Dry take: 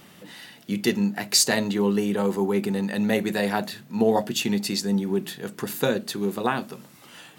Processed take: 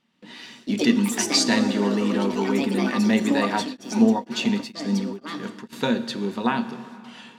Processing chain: LPF 4000 Hz 12 dB/oct; gate with hold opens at -37 dBFS; high shelf 2100 Hz +10.5 dB; notches 50/100 Hz; small resonant body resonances 230/940 Hz, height 13 dB, ringing for 95 ms; echoes that change speed 0.124 s, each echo +4 st, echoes 3, each echo -6 dB; plate-style reverb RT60 2.3 s, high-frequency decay 0.75×, DRR 11.5 dB; 3.54–5.73 beating tremolo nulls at 2.1 Hz; gain -4 dB

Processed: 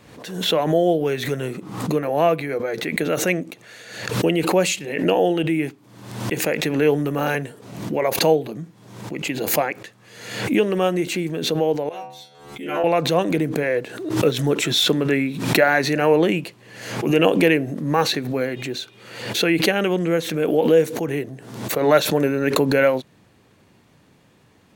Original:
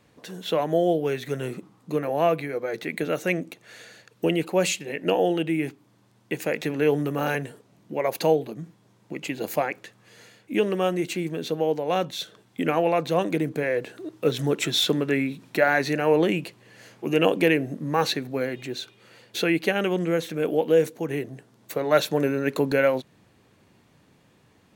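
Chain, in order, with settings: 11.89–12.84 metallic resonator 69 Hz, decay 0.84 s, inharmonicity 0.002; backwards sustainer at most 65 dB/s; gain +3.5 dB

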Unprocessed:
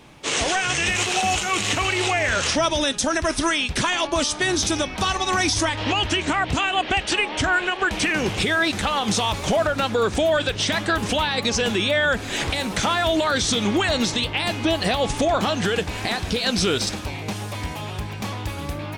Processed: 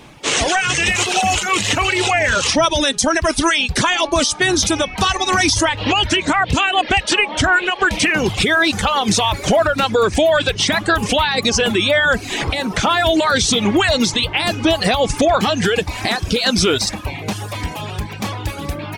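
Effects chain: reverb removal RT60 0.85 s; 12.33–12.89 high shelf 3800 Hz -> 5800 Hz -8 dB; gain +6.5 dB

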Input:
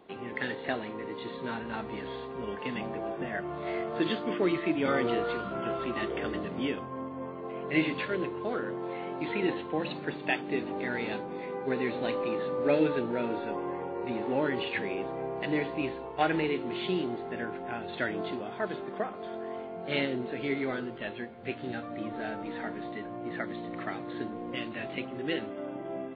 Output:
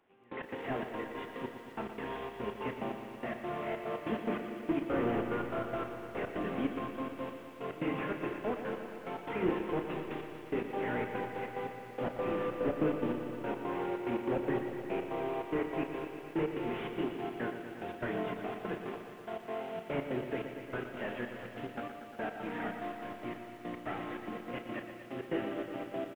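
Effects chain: delta modulation 16 kbps, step -42.5 dBFS; low shelf 81 Hz -6 dB; notches 50/100/150/200/250/300/350/400 Hz; step gate "...x.xxx.x.x.x" 144 bpm -24 dB; doubler 33 ms -11 dB; thin delay 0.115 s, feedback 84%, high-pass 2000 Hz, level -14 dB; on a send at -14 dB: reverb RT60 1.7 s, pre-delay 0.1 s; on the sum: lo-fi delay 0.118 s, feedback 80%, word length 10-bit, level -9.5 dB

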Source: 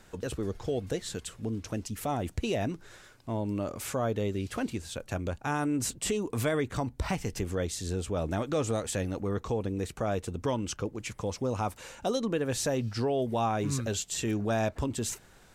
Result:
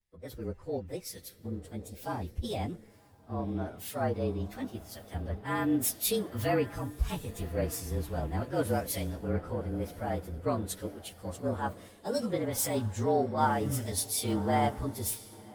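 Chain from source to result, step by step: inharmonic rescaling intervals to 111%; diffused feedback echo 1.087 s, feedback 50%, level -11 dB; three-band expander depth 100%

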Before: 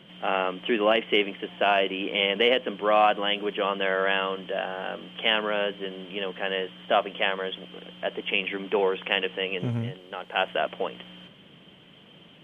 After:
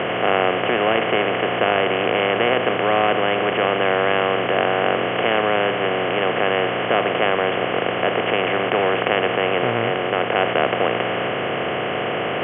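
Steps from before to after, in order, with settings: per-bin compression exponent 0.2; LPF 2700 Hz 24 dB/oct; gain -3 dB

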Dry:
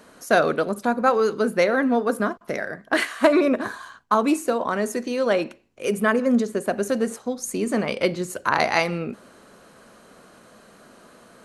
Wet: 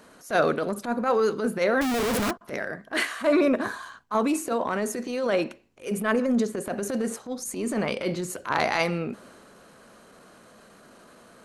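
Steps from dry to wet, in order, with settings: transient shaper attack -12 dB, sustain +2 dB; 1.81–2.31 Schmitt trigger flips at -38.5 dBFS; gain -1.5 dB

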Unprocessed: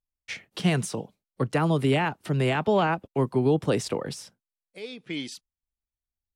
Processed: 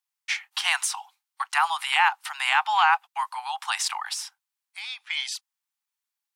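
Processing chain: steep high-pass 790 Hz 96 dB/oct; gain +8.5 dB

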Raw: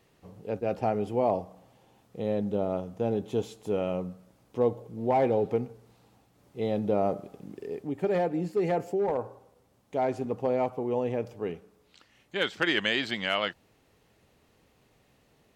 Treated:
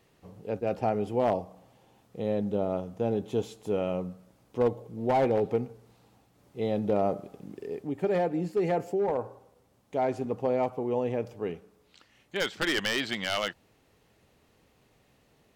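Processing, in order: one-sided fold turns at -20 dBFS

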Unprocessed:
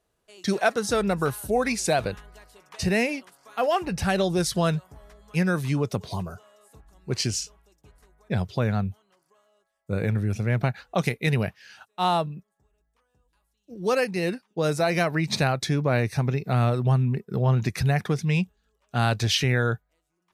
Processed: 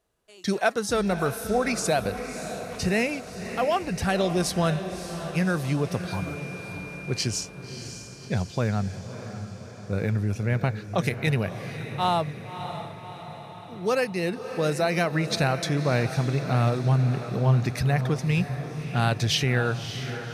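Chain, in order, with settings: 6.07–7.25 whine 2400 Hz -39 dBFS; diffused feedback echo 0.598 s, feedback 59%, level -10 dB; gain -1 dB

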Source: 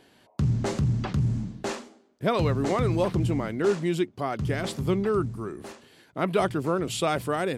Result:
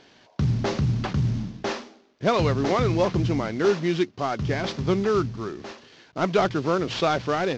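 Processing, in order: CVSD 32 kbps; low shelf 370 Hz -3.5 dB; gain +4.5 dB

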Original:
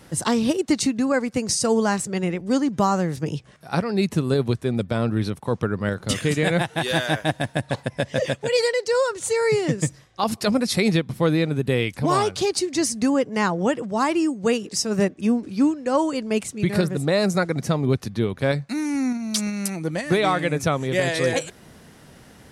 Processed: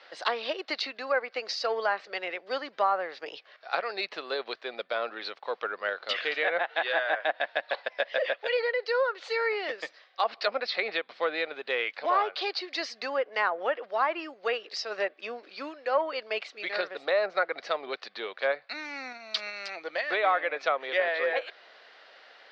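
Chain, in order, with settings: elliptic low-pass 4500 Hz, stop band 80 dB; in parallel at -12 dB: soft clip -21.5 dBFS, distortion -10 dB; on the sum: HPF 590 Hz 24 dB/oct; bell 930 Hz -6.5 dB 0.47 oct; treble ducked by the level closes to 1800 Hz, closed at -22 dBFS

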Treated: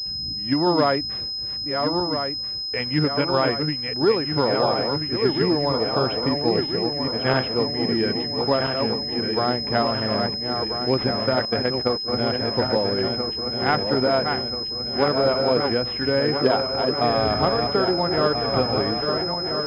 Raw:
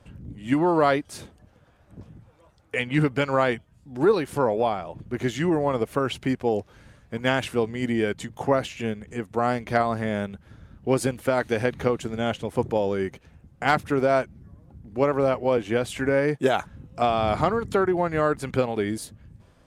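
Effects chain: regenerating reverse delay 0.667 s, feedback 74%, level -5 dB; 11.45–12.08 gate -23 dBFS, range -16 dB; pulse-width modulation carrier 5100 Hz

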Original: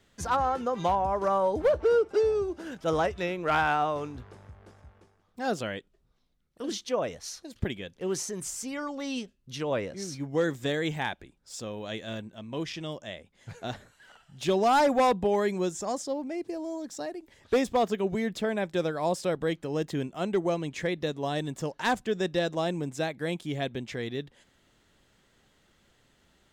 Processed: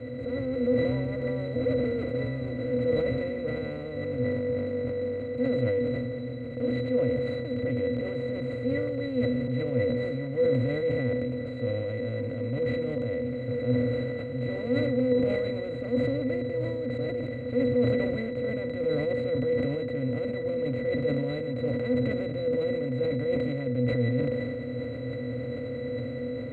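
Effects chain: per-bin compression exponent 0.2; fixed phaser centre 2400 Hz, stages 4; AGC gain up to 4.5 dB; octave resonator B, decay 0.19 s; sustainer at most 22 dB/s

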